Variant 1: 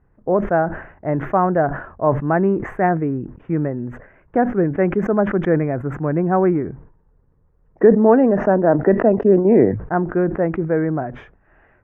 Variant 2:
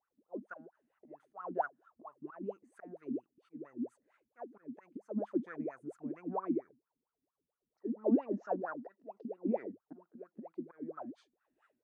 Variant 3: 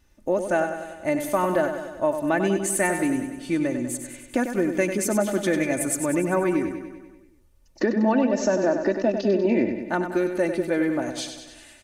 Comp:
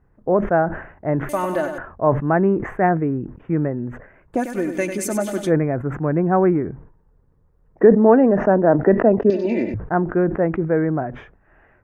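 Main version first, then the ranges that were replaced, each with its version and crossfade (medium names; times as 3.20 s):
1
1.29–1.78 s: from 3
4.38–5.48 s: from 3, crossfade 0.10 s
9.30–9.74 s: from 3
not used: 2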